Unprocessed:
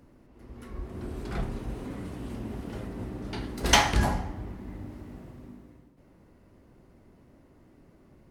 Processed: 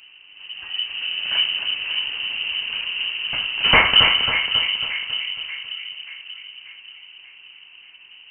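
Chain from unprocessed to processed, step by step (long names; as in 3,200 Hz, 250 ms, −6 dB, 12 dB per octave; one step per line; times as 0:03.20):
wave folding −12 dBFS
echo with a time of its own for lows and highs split 1,200 Hz, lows 584 ms, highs 273 ms, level −7 dB
voice inversion scrambler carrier 3,000 Hz
level +8.5 dB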